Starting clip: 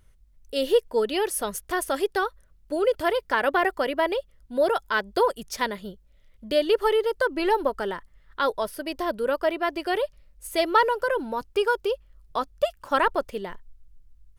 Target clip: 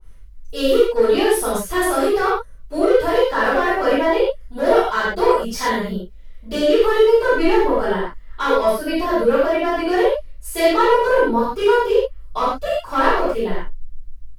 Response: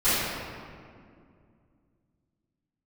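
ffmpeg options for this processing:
-filter_complex "[0:a]alimiter=limit=0.158:level=0:latency=1:release=47,asoftclip=type=hard:threshold=0.1[s0];[1:a]atrim=start_sample=2205,atrim=end_sample=6174,asetrate=41454,aresample=44100[s1];[s0][s1]afir=irnorm=-1:irlink=0,adynamicequalizer=threshold=0.0631:dfrequency=1600:dqfactor=0.7:tfrequency=1600:tqfactor=0.7:attack=5:release=100:ratio=0.375:range=2:mode=cutabove:tftype=highshelf,volume=0.562"

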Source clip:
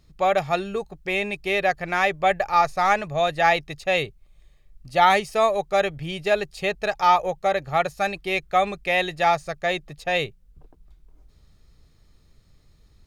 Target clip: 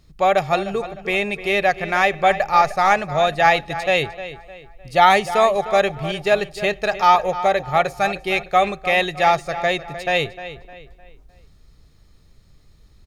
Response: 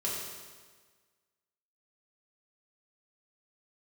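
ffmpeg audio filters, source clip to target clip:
-filter_complex "[0:a]asplit=2[s0][s1];[s1]adelay=305,lowpass=f=4100:p=1,volume=0.224,asplit=2[s2][s3];[s3]adelay=305,lowpass=f=4100:p=1,volume=0.39,asplit=2[s4][s5];[s5]adelay=305,lowpass=f=4100:p=1,volume=0.39,asplit=2[s6][s7];[s7]adelay=305,lowpass=f=4100:p=1,volume=0.39[s8];[s0][s2][s4][s6][s8]amix=inputs=5:normalize=0,asplit=2[s9][s10];[1:a]atrim=start_sample=2205,asetrate=83790,aresample=44100[s11];[s10][s11]afir=irnorm=-1:irlink=0,volume=0.0668[s12];[s9][s12]amix=inputs=2:normalize=0,volume=1.5"

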